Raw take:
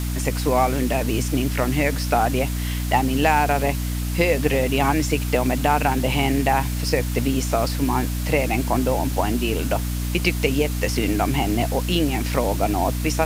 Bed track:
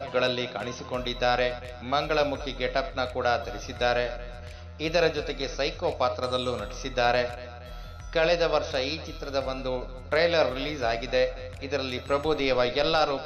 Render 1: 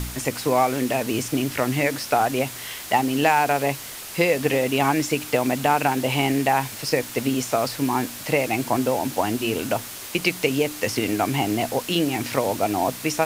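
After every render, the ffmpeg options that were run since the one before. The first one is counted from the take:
ffmpeg -i in.wav -af "bandreject=frequency=60:width_type=h:width=4,bandreject=frequency=120:width_type=h:width=4,bandreject=frequency=180:width_type=h:width=4,bandreject=frequency=240:width_type=h:width=4,bandreject=frequency=300:width_type=h:width=4" out.wav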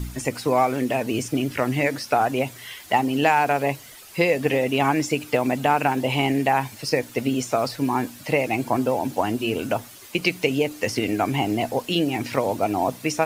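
ffmpeg -i in.wav -af "afftdn=noise_reduction=11:noise_floor=-36" out.wav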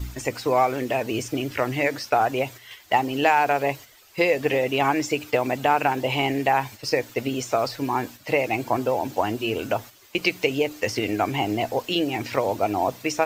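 ffmpeg -i in.wav -af "agate=range=-7dB:threshold=-36dB:ratio=16:detection=peak,equalizer=frequency=160:width_type=o:width=0.33:gain=-11,equalizer=frequency=250:width_type=o:width=0.33:gain=-6,equalizer=frequency=10000:width_type=o:width=0.33:gain=-12" out.wav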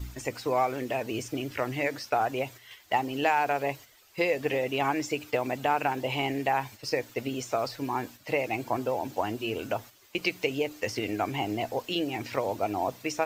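ffmpeg -i in.wav -af "volume=-6dB" out.wav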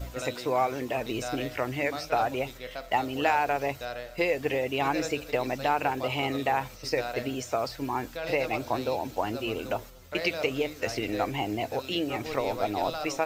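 ffmpeg -i in.wav -i bed.wav -filter_complex "[1:a]volume=-12dB[link_01];[0:a][link_01]amix=inputs=2:normalize=0" out.wav

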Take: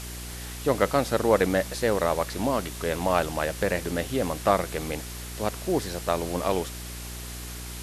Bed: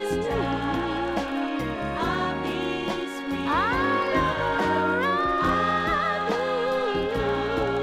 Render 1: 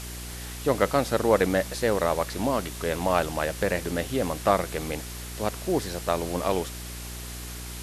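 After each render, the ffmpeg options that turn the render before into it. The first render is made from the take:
ffmpeg -i in.wav -af anull out.wav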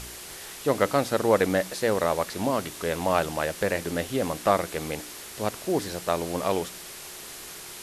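ffmpeg -i in.wav -af "bandreject=frequency=60:width_type=h:width=4,bandreject=frequency=120:width_type=h:width=4,bandreject=frequency=180:width_type=h:width=4,bandreject=frequency=240:width_type=h:width=4,bandreject=frequency=300:width_type=h:width=4" out.wav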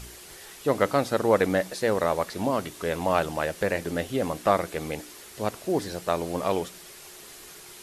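ffmpeg -i in.wav -af "afftdn=noise_reduction=6:noise_floor=-41" out.wav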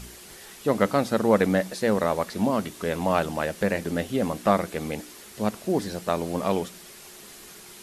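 ffmpeg -i in.wav -af "equalizer=frequency=210:width=3.4:gain=9.5" out.wav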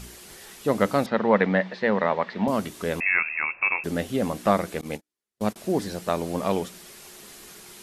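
ffmpeg -i in.wav -filter_complex "[0:a]asettb=1/sr,asplit=3[link_01][link_02][link_03];[link_01]atrim=end=1.064[link_04];[link_02]atrim=start=1.06:end=2.48,asetpts=PTS-STARTPTS,afade=type=in:duration=0.004:curve=qsin,afade=type=out:start_time=1.416:duration=0.004:curve=qsin,highpass=170,equalizer=frequency=190:width_type=q:width=4:gain=3,equalizer=frequency=310:width_type=q:width=4:gain=-6,equalizer=frequency=940:width_type=q:width=4:gain=5,equalizer=frequency=1900:width_type=q:width=4:gain=7,lowpass=frequency=3800:width=0.5412,lowpass=frequency=3800:width=1.3066[link_05];[link_03]atrim=start=2.476[link_06];[link_04][link_05]acrossfade=duration=0.004:curve1=hsin:curve2=qsin[link_07];[link_07][link_06]acrossfade=duration=0.004:curve1=qsin:curve2=hsin,asettb=1/sr,asplit=3[link_08][link_09][link_10];[link_08]atrim=end=3.004[link_11];[link_09]atrim=start=3:end=3.84,asetpts=PTS-STARTPTS,afade=type=in:duration=0.004:curve=qsin,afade=type=out:start_time=0.836:duration=0.004:curve=qsin,lowpass=frequency=2400:width_type=q:width=0.5098,lowpass=frequency=2400:width_type=q:width=0.6013,lowpass=frequency=2400:width_type=q:width=0.9,lowpass=frequency=2400:width_type=q:width=2.563,afreqshift=-2800[link_12];[link_10]atrim=start=3.836[link_13];[link_11][link_12]acrossfade=duration=0.004:curve1=hsin:curve2=qsin[link_14];[link_14][link_13]acrossfade=duration=0.004:curve1=qsin:curve2=hsin,asettb=1/sr,asplit=3[link_15][link_16][link_17];[link_15]atrim=end=4.814[link_18];[link_16]atrim=start=4.81:end=5.56,asetpts=PTS-STARTPTS,afade=type=in:duration=0.004:curve=qsin,afade=type=out:start_time=0.746:duration=0.004:curve=qsin,agate=range=-45dB:threshold=-32dB:ratio=16:release=100:detection=peak[link_19];[link_17]atrim=start=5.556[link_20];[link_18][link_19]acrossfade=duration=0.004:curve1=hsin:curve2=qsin[link_21];[link_21][link_20]acrossfade=duration=0.004:curve1=qsin:curve2=hsin" out.wav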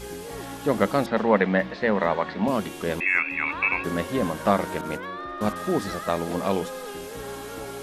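ffmpeg -i in.wav -i bed.wav -filter_complex "[1:a]volume=-11dB[link_01];[0:a][link_01]amix=inputs=2:normalize=0" out.wav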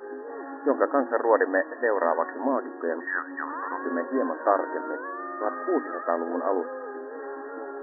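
ffmpeg -i in.wav -af "afftfilt=real='re*between(b*sr/4096,240,1900)':imag='im*between(b*sr/4096,240,1900)':win_size=4096:overlap=0.75" out.wav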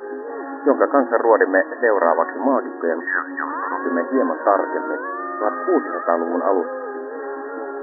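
ffmpeg -i in.wav -af "volume=7.5dB,alimiter=limit=-2dB:level=0:latency=1" out.wav

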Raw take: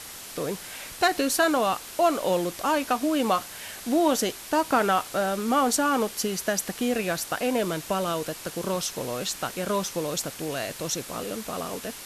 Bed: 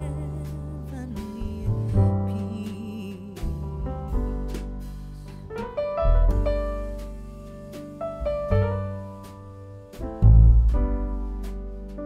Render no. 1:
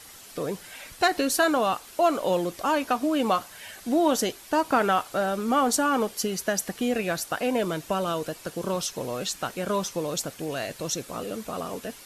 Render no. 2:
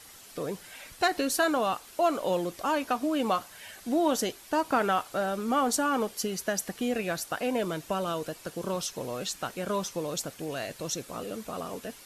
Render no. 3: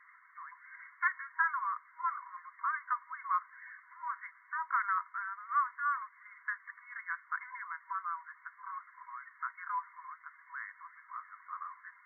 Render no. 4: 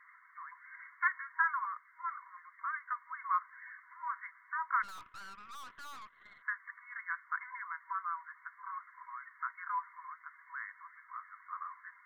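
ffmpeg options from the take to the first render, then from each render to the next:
ffmpeg -i in.wav -af "afftdn=noise_reduction=8:noise_floor=-41" out.wav
ffmpeg -i in.wav -af "volume=-3.5dB" out.wav
ffmpeg -i in.wav -af "afftfilt=real='re*between(b*sr/4096,960,2200)':imag='im*between(b*sr/4096,960,2200)':win_size=4096:overlap=0.75,adynamicequalizer=threshold=0.0112:dfrequency=1400:dqfactor=1.2:tfrequency=1400:tqfactor=1.2:attack=5:release=100:ratio=0.375:range=2:mode=cutabove:tftype=bell" out.wav
ffmpeg -i in.wav -filter_complex "[0:a]asettb=1/sr,asplit=3[link_01][link_02][link_03];[link_01]atrim=end=1.654[link_04];[link_02]atrim=start=1.65:end=3.06,asetpts=PTS-STARTPTS,afade=type=in:duration=0.004:curve=qsin,afade=type=out:start_time=1.406:duration=0.004:curve=qsin,highpass=1400[link_05];[link_03]atrim=start=3.056[link_06];[link_04][link_05]acrossfade=duration=0.004:curve1=hsin:curve2=qsin[link_07];[link_07][link_06]acrossfade=duration=0.004:curve1=qsin:curve2=hsin,asplit=3[link_08][link_09][link_10];[link_08]afade=type=out:start_time=4.82:duration=0.02[link_11];[link_09]aeval=exprs='(tanh(224*val(0)+0.7)-tanh(0.7))/224':channel_layout=same,afade=type=in:start_time=4.82:duration=0.02,afade=type=out:start_time=6.41:duration=0.02[link_12];[link_10]afade=type=in:start_time=6.41:duration=0.02[link_13];[link_11][link_12][link_13]amix=inputs=3:normalize=0,asettb=1/sr,asplit=3[link_14][link_15][link_16];[link_14]atrim=end=10.794[link_17];[link_15]atrim=start=10.79:end=11.52,asetpts=PTS-STARTPTS,afade=type=in:duration=0.004:curve=qsin,afade=type=out:start_time=0.726:duration=0.004:curve=qsin,highpass=930[link_18];[link_16]atrim=start=11.516[link_19];[link_17][link_18]acrossfade=duration=0.004:curve1=hsin:curve2=qsin[link_20];[link_20][link_19]acrossfade=duration=0.004:curve1=qsin:curve2=hsin" out.wav

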